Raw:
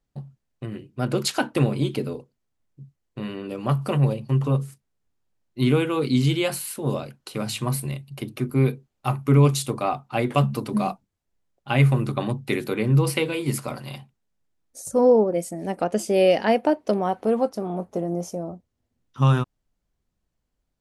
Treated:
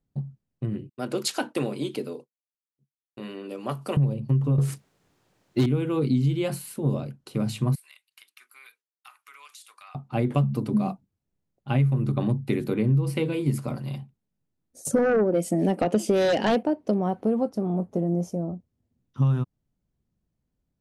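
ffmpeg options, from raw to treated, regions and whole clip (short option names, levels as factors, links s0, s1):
-filter_complex "[0:a]asettb=1/sr,asplit=3[s0][s1][s2];[s0]atrim=end=0.894[s3];[s1]atrim=start=0.89:end=3.97,asetpts=PTS-STARTPTS,afade=t=in:d=0.004:c=qsin,afade=t=out:st=3.076:d=0.004:c=qsin,highpass=390,agate=range=0.0224:threshold=0.00398:ratio=3:release=100:detection=peak,equalizer=f=7900:t=o:w=2.9:g=6.5[s4];[s2]atrim=start=3.966[s5];[s3][s4]acrossfade=d=0.004:c1=hsin:c2=qsin[s6];[s6][s5]acrossfade=d=0.004:c1=qsin:c2=hsin,asettb=1/sr,asplit=3[s7][s8][s9];[s7]atrim=end=4.584[s10];[s8]atrim=start=4.58:end=5.66,asetpts=PTS-STARTPTS,afade=t=in:d=0.004:c=qsin,afade=t=out:st=1.076:d=0.004:c=qsin,equalizer=f=230:t=o:w=0.23:g=-8.5,acontrast=30,asplit=2[s11][s12];[s12]highpass=f=720:p=1,volume=22.4,asoftclip=type=tanh:threshold=0.422[s13];[s11][s13]amix=inputs=2:normalize=0,lowpass=f=5800:p=1,volume=0.501[s14];[s9]atrim=start=5.656[s15];[s10][s14]acrossfade=d=0.004:c1=hsin:c2=qsin[s16];[s16][s15]acrossfade=d=0.004:c1=qsin:c2=hsin,asettb=1/sr,asplit=3[s17][s18][s19];[s17]atrim=end=7.754[s20];[s18]atrim=start=7.75:end=9.95,asetpts=PTS-STARTPTS,afade=t=in:d=0.004:c=qsin,afade=t=out:st=2.196:d=0.004:c=qsin,agate=range=0.0224:threshold=0.00562:ratio=3:release=100:detection=peak,highpass=f=1400:w=0.5412,highpass=f=1400:w=1.3066,acompressor=threshold=0.0126:ratio=4:attack=3.2:release=140:knee=1:detection=peak[s21];[s19]atrim=start=9.946[s22];[s20][s21]acrossfade=d=0.004:c1=hsin:c2=qsin[s23];[s23][s22]acrossfade=d=0.004:c1=qsin:c2=hsin,asettb=1/sr,asplit=3[s24][s25][s26];[s24]atrim=end=14.854[s27];[s25]atrim=start=14.85:end=16.63,asetpts=PTS-STARTPTS,afade=t=in:d=0.004:c=qsin,afade=t=out:st=1.776:d=0.004:c=qsin,highpass=210,equalizer=f=3000:t=o:w=0.58:g=7,aeval=exprs='0.447*sin(PI/2*2.51*val(0)/0.447)':c=same[s28];[s26]atrim=start=16.626[s29];[s27][s28]acrossfade=d=0.004:c1=hsin:c2=qsin[s30];[s30][s29]acrossfade=d=0.004:c1=qsin:c2=hsin,equalizer=f=150:w=0.37:g=13.5,acompressor=threshold=0.282:ratio=6,volume=0.398"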